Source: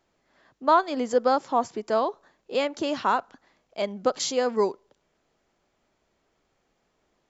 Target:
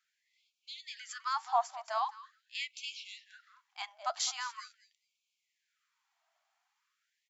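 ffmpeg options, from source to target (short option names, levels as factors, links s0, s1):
-af "flanger=delay=1.9:depth=3.4:regen=81:speed=0.45:shape=triangular,aecho=1:1:209|418:0.15|0.0239,afftfilt=real='re*gte(b*sr/1024,600*pow(2200/600,0.5+0.5*sin(2*PI*0.43*pts/sr)))':imag='im*gte(b*sr/1024,600*pow(2200/600,0.5+0.5*sin(2*PI*0.43*pts/sr)))':win_size=1024:overlap=0.75"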